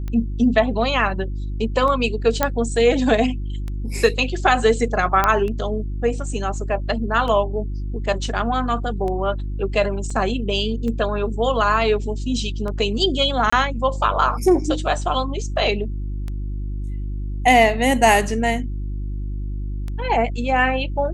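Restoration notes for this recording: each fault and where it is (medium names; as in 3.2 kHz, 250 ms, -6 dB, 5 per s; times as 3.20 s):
hum 50 Hz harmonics 7 -26 dBFS
tick 33 1/3 rpm -18 dBFS
2.43 s: pop -3 dBFS
5.24 s: pop -4 dBFS
10.10 s: dropout 4.1 ms
13.50–13.53 s: dropout 25 ms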